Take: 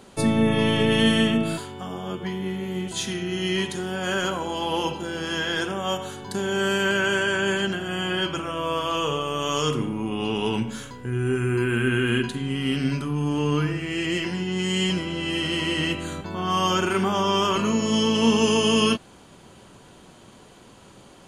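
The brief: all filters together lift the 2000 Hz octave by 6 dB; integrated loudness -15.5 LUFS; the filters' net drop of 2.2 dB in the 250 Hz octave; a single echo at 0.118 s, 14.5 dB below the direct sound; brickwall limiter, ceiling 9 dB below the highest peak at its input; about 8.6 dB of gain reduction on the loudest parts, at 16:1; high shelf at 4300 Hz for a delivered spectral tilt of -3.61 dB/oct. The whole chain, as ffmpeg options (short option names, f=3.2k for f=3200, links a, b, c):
-af "equalizer=f=250:t=o:g=-3,equalizer=f=2k:t=o:g=7,highshelf=f=4.3k:g=6,acompressor=threshold=-23dB:ratio=16,alimiter=limit=-22dB:level=0:latency=1,aecho=1:1:118:0.188,volume=15dB"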